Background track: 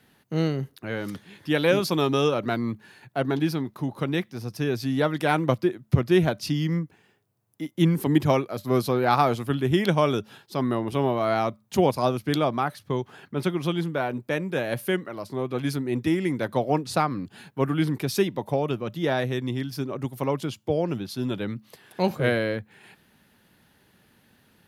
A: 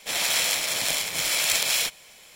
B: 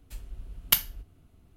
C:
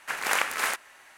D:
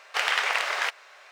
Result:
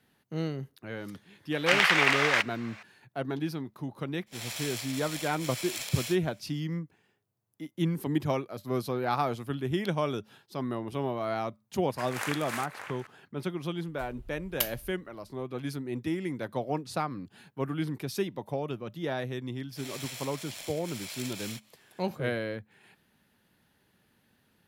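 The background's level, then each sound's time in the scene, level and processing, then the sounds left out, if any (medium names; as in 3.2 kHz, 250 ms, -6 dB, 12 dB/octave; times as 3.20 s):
background track -8 dB
1.52 s: add D -0.5 dB + peaking EQ 2.2 kHz +4.5 dB 0.79 oct
4.26 s: add A -14 dB, fades 0.02 s
11.90 s: add C -9.5 dB + echo from a far wall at 100 m, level -6 dB
13.88 s: add B -7.5 dB
19.70 s: add A -18 dB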